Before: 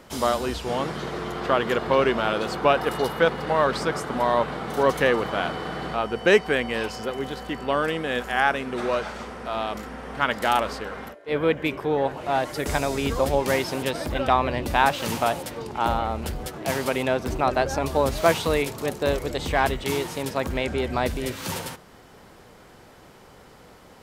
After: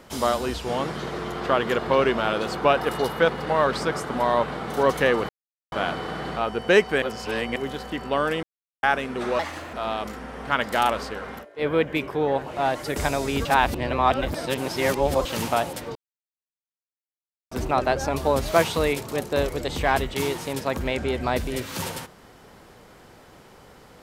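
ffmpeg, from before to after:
ffmpeg -i in.wav -filter_complex "[0:a]asplit=12[link_01][link_02][link_03][link_04][link_05][link_06][link_07][link_08][link_09][link_10][link_11][link_12];[link_01]atrim=end=5.29,asetpts=PTS-STARTPTS,afade=type=out:start_time=5.286:duration=0.004:curve=hsin,apad=pad_dur=0.43[link_13];[link_02]atrim=start=5.29:end=6.592,asetpts=PTS-STARTPTS,afade=type=in:duration=0.004:curve=hsin[link_14];[link_03]atrim=start=6.588:end=7.132,asetpts=PTS-STARTPTS,areverse[link_15];[link_04]atrim=start=7.128:end=8,asetpts=PTS-STARTPTS,afade=type=out:start_time=0.868:duration=0.004:curve=hsin[link_16];[link_05]atrim=start=8:end=8.4,asetpts=PTS-STARTPTS,volume=0[link_17];[link_06]atrim=start=8.4:end=8.964,asetpts=PTS-STARTPTS,afade=type=in:duration=0.004:curve=hsin[link_18];[link_07]atrim=start=8.96:end=9.43,asetpts=PTS-STARTPTS,asetrate=60417,aresample=44100,atrim=end_sample=15129,asetpts=PTS-STARTPTS[link_19];[link_08]atrim=start=9.426:end=13.152[link_20];[link_09]atrim=start=13.148:end=14.952,asetpts=PTS-STARTPTS,areverse[link_21];[link_10]atrim=start=14.948:end=15.65,asetpts=PTS-STARTPTS,afade=type=out:start_time=0.698:duration=0.004:curve=hsin[link_22];[link_11]atrim=start=15.65:end=17.21,asetpts=PTS-STARTPTS,volume=0[link_23];[link_12]atrim=start=17.21,asetpts=PTS-STARTPTS,afade=type=in:duration=0.004:curve=hsin[link_24];[link_13][link_14]concat=n=2:v=0:a=1[link_25];[link_25][link_15]acrossfade=duration=0.004:curve1=hsin:curve2=hsin[link_26];[link_16][link_17][link_18]concat=n=3:v=0:a=1[link_27];[link_26][link_27]acrossfade=duration=0.004:curve1=hsin:curve2=hsin[link_28];[link_28][link_19]acrossfade=duration=0.004:curve1=hsin:curve2=hsin[link_29];[link_29][link_20]acrossfade=duration=0.004:curve1=hsin:curve2=hsin[link_30];[link_30][link_21]acrossfade=duration=0.004:curve1=hsin:curve2=hsin[link_31];[link_22][link_23][link_24]concat=n=3:v=0:a=1[link_32];[link_31][link_32]acrossfade=duration=0.004:curve1=hsin:curve2=hsin" out.wav

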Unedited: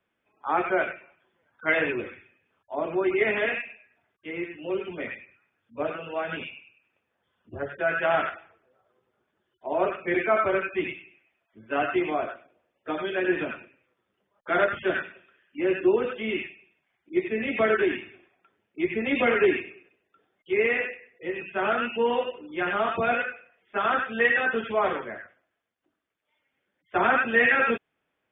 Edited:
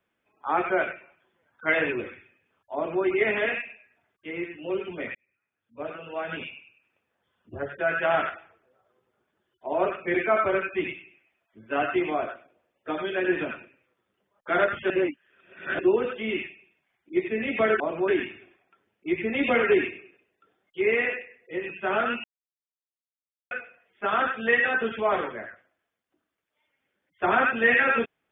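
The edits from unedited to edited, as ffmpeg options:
ffmpeg -i in.wav -filter_complex "[0:a]asplit=8[link_01][link_02][link_03][link_04][link_05][link_06][link_07][link_08];[link_01]atrim=end=5.15,asetpts=PTS-STARTPTS,afade=type=out:start_time=5.146:duration=0.004:curve=hsin[link_09];[link_02]atrim=start=5.15:end=14.902,asetpts=PTS-STARTPTS,afade=type=in:duration=1.32[link_10];[link_03]atrim=start=14.898:end=15.792,asetpts=PTS-STARTPTS,areverse[link_11];[link_04]atrim=start=15.788:end=17.802[link_12];[link_05]atrim=start=2.748:end=3.032[link_13];[link_06]atrim=start=17.798:end=21.96,asetpts=PTS-STARTPTS,afade=type=out:start_time=4.158:duration=0.004:curve=hsin[link_14];[link_07]atrim=start=21.96:end=23.23,asetpts=PTS-STARTPTS,volume=0[link_15];[link_08]atrim=start=23.23,asetpts=PTS-STARTPTS,afade=type=in:duration=0.004:curve=hsin[link_16];[link_09][link_10]concat=n=2:v=0:a=1[link_17];[link_17][link_11]acrossfade=duration=0.004:curve1=hsin:curve2=hsin[link_18];[link_18][link_12]acrossfade=duration=0.004:curve1=hsin:curve2=hsin[link_19];[link_19][link_13]acrossfade=duration=0.004:curve1=hsin:curve2=hsin[link_20];[link_14][link_15][link_16]concat=n=3:v=0:a=1[link_21];[link_20][link_21]acrossfade=duration=0.004:curve1=hsin:curve2=hsin" out.wav

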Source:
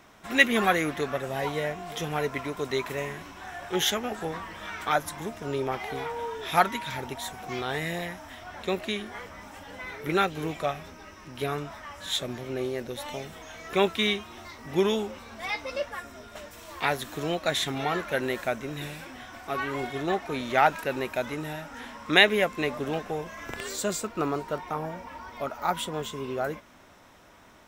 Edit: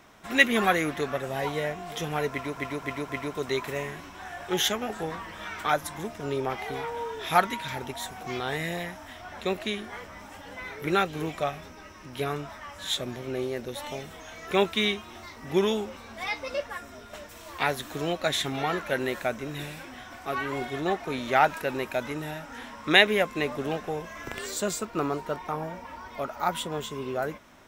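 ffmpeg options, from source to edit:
ffmpeg -i in.wav -filter_complex "[0:a]asplit=4[link_01][link_02][link_03][link_04];[link_01]atrim=end=2.572[link_05];[link_02]atrim=start=2.308:end=2.572[link_06];[link_03]atrim=start=2.308:end=2.572[link_07];[link_04]atrim=start=2.308[link_08];[link_05][link_06]acrossfade=duration=0.004:curve1=hsin:curve2=hsin[link_09];[link_09][link_07]acrossfade=duration=0.004:curve1=hsin:curve2=hsin[link_10];[link_10][link_08]acrossfade=duration=0.004:curve1=hsin:curve2=hsin" out.wav

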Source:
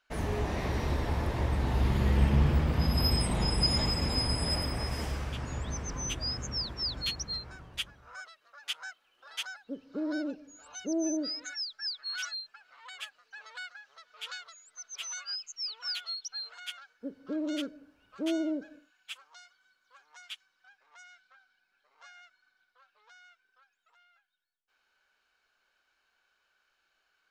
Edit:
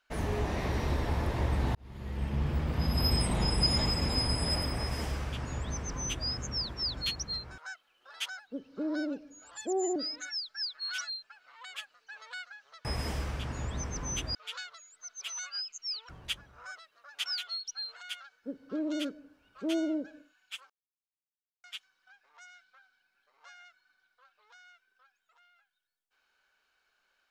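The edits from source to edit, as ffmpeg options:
ffmpeg -i in.wav -filter_complex "[0:a]asplit=11[link_01][link_02][link_03][link_04][link_05][link_06][link_07][link_08][link_09][link_10][link_11];[link_01]atrim=end=1.75,asetpts=PTS-STARTPTS,afade=type=out:start_time=1.746:duration=0.004:curve=hsin[link_12];[link_02]atrim=start=1.75:end=7.582,asetpts=PTS-STARTPTS,afade=type=in:duration=1.44[link_13];[link_03]atrim=start=8.748:end=10.684[link_14];[link_04]atrim=start=10.68:end=11.2,asetpts=PTS-STARTPTS,asetrate=51156,aresample=44100[link_15];[link_05]atrim=start=11.196:end=14.092[link_16];[link_06]atrim=start=4.778:end=6.282[link_17];[link_07]atrim=start=14.088:end=15.832[link_18];[link_08]atrim=start=7.578:end=8.752[link_19];[link_09]atrim=start=15.828:end=19.27,asetpts=PTS-STARTPTS,afade=type=out:start_time=3.438:duration=0.004:curve=hsin[link_20];[link_10]atrim=start=19.27:end=20.21,asetpts=PTS-STARTPTS,volume=0[link_21];[link_11]atrim=start=20.21,asetpts=PTS-STARTPTS,afade=type=in:duration=0.004:curve=hsin[link_22];[link_12][link_13]concat=n=2:v=0:a=1[link_23];[link_23][link_14]acrossfade=duration=0.004:curve1=hsin:curve2=hsin[link_24];[link_24][link_15]acrossfade=duration=0.004:curve1=hsin:curve2=hsin[link_25];[link_25][link_16]acrossfade=duration=0.004:curve1=hsin:curve2=hsin[link_26];[link_26][link_17]acrossfade=duration=0.004:curve1=hsin:curve2=hsin[link_27];[link_27][link_18]acrossfade=duration=0.004:curve1=hsin:curve2=hsin[link_28];[link_28][link_19]acrossfade=duration=0.004:curve1=hsin:curve2=hsin[link_29];[link_20][link_21][link_22]concat=n=3:v=0:a=1[link_30];[link_29][link_30]acrossfade=duration=0.004:curve1=hsin:curve2=hsin" out.wav

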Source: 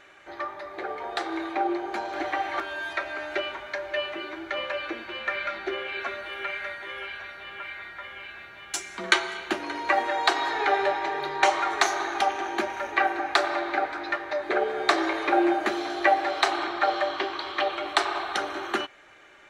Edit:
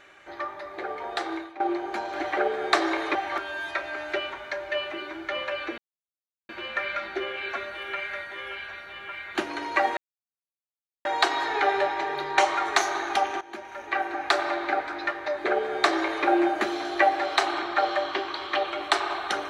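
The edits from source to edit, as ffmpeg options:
ffmpeg -i in.wav -filter_complex "[0:a]asplit=8[link_01][link_02][link_03][link_04][link_05][link_06][link_07][link_08];[link_01]atrim=end=1.6,asetpts=PTS-STARTPTS,afade=type=out:start_time=1.33:duration=0.27:curve=qua:silence=0.188365[link_09];[link_02]atrim=start=1.6:end=2.372,asetpts=PTS-STARTPTS,afade=type=in:duration=0.004:curve=hsin:silence=0.188365[link_10];[link_03]atrim=start=14.528:end=15.312[link_11];[link_04]atrim=start=2.368:end=5,asetpts=PTS-STARTPTS,afade=type=out:start_time=2.628:duration=0.004:curve=hsin,apad=pad_dur=0.71[link_12];[link_05]atrim=start=5:end=7.862,asetpts=PTS-STARTPTS,afade=type=in:duration=0.004:curve=hsin[link_13];[link_06]atrim=start=9.478:end=10.1,asetpts=PTS-STARTPTS,afade=type=out:start_time=0.618:duration=0.004:curve=hsin,apad=pad_dur=1.08[link_14];[link_07]atrim=start=10.1:end=12.46,asetpts=PTS-STARTPTS,afade=type=in:duration=0.004:curve=hsin,afade=type=out:start_time=2.356:duration=0.004:curve=hsin:silence=0.141254[link_15];[link_08]atrim=start=12.46,asetpts=PTS-STARTPTS,afade=type=in:duration=0.99:silence=0.141254[link_16];[link_09][link_10]concat=n=2:v=0:a=1[link_17];[link_17][link_11]acrossfade=duration=0.004:curve1=hsin:curve2=hsin[link_18];[link_12][link_13]concat=n=2:v=0:a=1[link_19];[link_18][link_19]acrossfade=duration=0.004:curve1=hsin:curve2=hsin[link_20];[link_14][link_15][link_16]concat=n=3:v=0:a=1[link_21];[link_20][link_21]acrossfade=duration=0.004:curve1=hsin:curve2=hsin" out.wav

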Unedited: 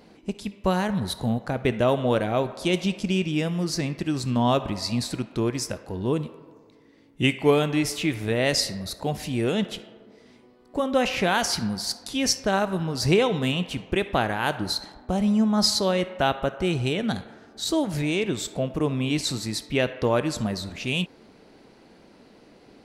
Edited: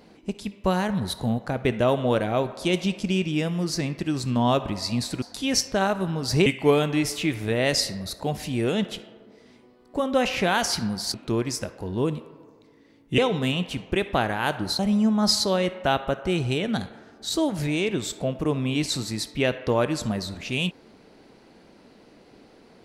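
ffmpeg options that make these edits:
ffmpeg -i in.wav -filter_complex "[0:a]asplit=6[link_01][link_02][link_03][link_04][link_05][link_06];[link_01]atrim=end=5.222[link_07];[link_02]atrim=start=11.938:end=13.182[link_08];[link_03]atrim=start=7.258:end=11.942[link_09];[link_04]atrim=start=5.218:end=7.262[link_10];[link_05]atrim=start=13.178:end=14.792[link_11];[link_06]atrim=start=15.138[link_12];[link_07][link_08]acrossfade=duration=0.004:curve1=hsin:curve2=hsin[link_13];[link_13][link_09]acrossfade=duration=0.004:curve1=hsin:curve2=hsin[link_14];[link_14][link_10]acrossfade=duration=0.004:curve1=hsin:curve2=hsin[link_15];[link_15][link_11]acrossfade=duration=0.004:curve1=hsin:curve2=hsin[link_16];[link_16][link_12]acrossfade=duration=0.004:curve1=hsin:curve2=hsin" out.wav

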